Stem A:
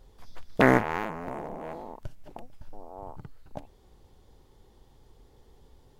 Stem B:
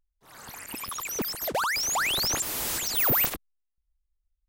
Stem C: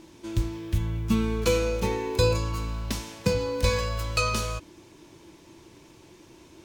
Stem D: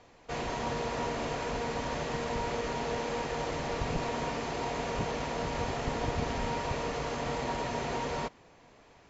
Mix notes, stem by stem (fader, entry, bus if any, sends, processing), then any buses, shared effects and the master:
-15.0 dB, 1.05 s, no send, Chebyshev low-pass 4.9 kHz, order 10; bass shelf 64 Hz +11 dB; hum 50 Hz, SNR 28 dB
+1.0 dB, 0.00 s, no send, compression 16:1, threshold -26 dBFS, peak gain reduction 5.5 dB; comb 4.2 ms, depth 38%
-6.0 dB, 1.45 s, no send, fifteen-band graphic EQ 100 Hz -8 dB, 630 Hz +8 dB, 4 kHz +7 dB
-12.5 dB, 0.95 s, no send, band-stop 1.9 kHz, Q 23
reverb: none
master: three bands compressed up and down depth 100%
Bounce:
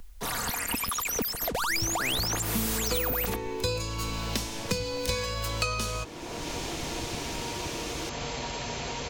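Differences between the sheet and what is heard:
stem A: entry 1.05 s -> 1.40 s; stem C: missing fifteen-band graphic EQ 100 Hz -8 dB, 630 Hz +8 dB, 4 kHz +7 dB; stem D -12.5 dB -> -21.0 dB

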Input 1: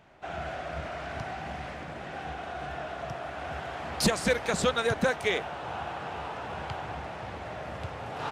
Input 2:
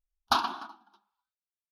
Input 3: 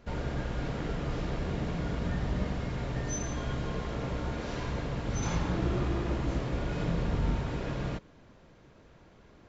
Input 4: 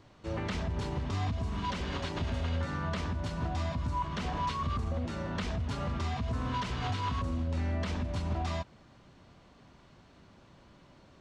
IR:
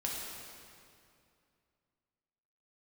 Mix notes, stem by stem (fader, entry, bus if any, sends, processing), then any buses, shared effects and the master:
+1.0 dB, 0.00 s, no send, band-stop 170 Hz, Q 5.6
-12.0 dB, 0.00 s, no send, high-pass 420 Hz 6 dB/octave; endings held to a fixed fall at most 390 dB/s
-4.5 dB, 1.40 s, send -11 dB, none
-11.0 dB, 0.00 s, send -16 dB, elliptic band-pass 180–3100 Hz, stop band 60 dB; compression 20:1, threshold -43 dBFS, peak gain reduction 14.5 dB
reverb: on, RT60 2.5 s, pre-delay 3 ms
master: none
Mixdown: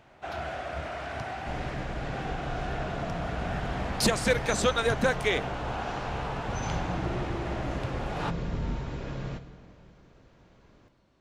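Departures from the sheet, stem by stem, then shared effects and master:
stem 2 -12.0 dB -> -22.0 dB; stem 4: missing elliptic band-pass 180–3100 Hz, stop band 60 dB

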